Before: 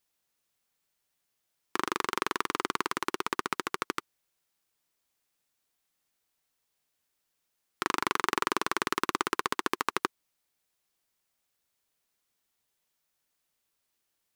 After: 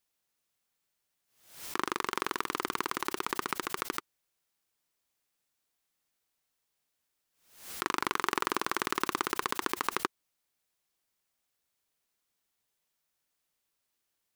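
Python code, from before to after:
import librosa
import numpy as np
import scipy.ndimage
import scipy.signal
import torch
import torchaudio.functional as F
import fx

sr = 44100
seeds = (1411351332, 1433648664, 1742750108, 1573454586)

y = fx.pre_swell(x, sr, db_per_s=100.0)
y = F.gain(torch.from_numpy(y), -2.0).numpy()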